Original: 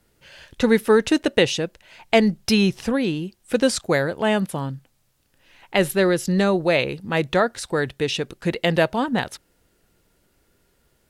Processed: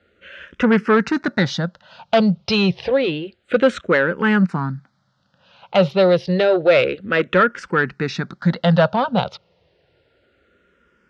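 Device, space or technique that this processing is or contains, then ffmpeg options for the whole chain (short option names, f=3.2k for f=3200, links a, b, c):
barber-pole phaser into a guitar amplifier: -filter_complex "[0:a]asplit=2[a][b];[b]afreqshift=-0.29[c];[a][c]amix=inputs=2:normalize=1,asoftclip=type=tanh:threshold=-16.5dB,highpass=86,equalizer=f=180:t=q:w=4:g=6,equalizer=f=310:t=q:w=4:g=-4,equalizer=f=550:t=q:w=4:g=5,equalizer=f=1.4k:t=q:w=4:g=8,lowpass=f=4.5k:w=0.5412,lowpass=f=4.5k:w=1.3066,volume=6.5dB"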